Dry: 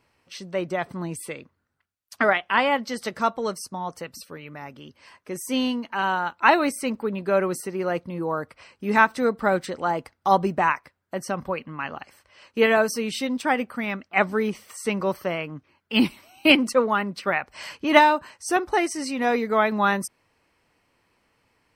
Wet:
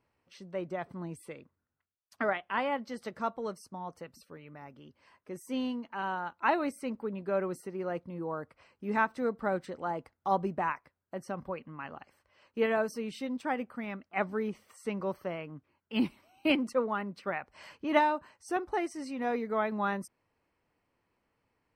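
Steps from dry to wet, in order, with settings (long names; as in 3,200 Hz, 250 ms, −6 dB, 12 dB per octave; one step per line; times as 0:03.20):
high-shelf EQ 2,100 Hz −9.5 dB
level −8.5 dB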